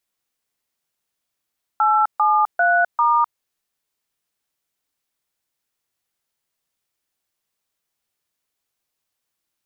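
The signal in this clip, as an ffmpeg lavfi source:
-f lavfi -i "aevalsrc='0.158*clip(min(mod(t,0.396),0.256-mod(t,0.396))/0.002,0,1)*(eq(floor(t/0.396),0)*(sin(2*PI*852*mod(t,0.396))+sin(2*PI*1336*mod(t,0.396)))+eq(floor(t/0.396),1)*(sin(2*PI*852*mod(t,0.396))+sin(2*PI*1209*mod(t,0.396)))+eq(floor(t/0.396),2)*(sin(2*PI*697*mod(t,0.396))+sin(2*PI*1477*mod(t,0.396)))+eq(floor(t/0.396),3)*(sin(2*PI*941*mod(t,0.396))+sin(2*PI*1209*mod(t,0.396))))':d=1.584:s=44100"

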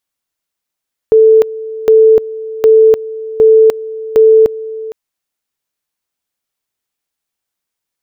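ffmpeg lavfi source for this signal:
-f lavfi -i "aevalsrc='pow(10,(-2.5-17.5*gte(mod(t,0.76),0.3))/20)*sin(2*PI*441*t)':d=3.8:s=44100"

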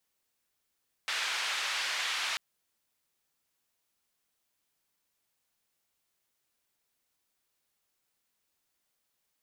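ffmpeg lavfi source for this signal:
-f lavfi -i "anoisesrc=c=white:d=1.29:r=44100:seed=1,highpass=f=1200,lowpass=f=3500,volume=-18.8dB"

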